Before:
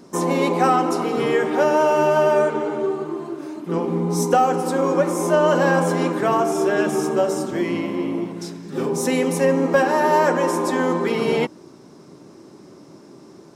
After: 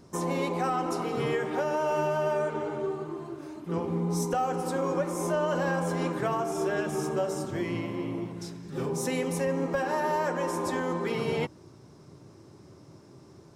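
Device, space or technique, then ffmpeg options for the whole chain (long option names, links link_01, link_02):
car stereo with a boomy subwoofer: -af "lowshelf=frequency=150:width_type=q:width=1.5:gain=11.5,alimiter=limit=-11.5dB:level=0:latency=1:release=214,volume=-7.5dB"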